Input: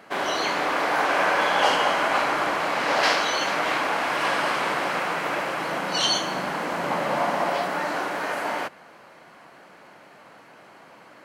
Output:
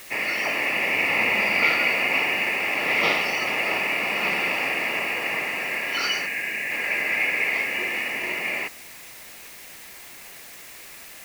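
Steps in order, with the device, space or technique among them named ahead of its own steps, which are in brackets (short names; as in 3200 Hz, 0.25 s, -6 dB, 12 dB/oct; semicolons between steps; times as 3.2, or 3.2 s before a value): 6.26–6.71 LPF 1700 Hz; split-band scrambled radio (four-band scrambler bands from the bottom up 2143; BPF 310–3100 Hz; white noise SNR 18 dB); gain +1.5 dB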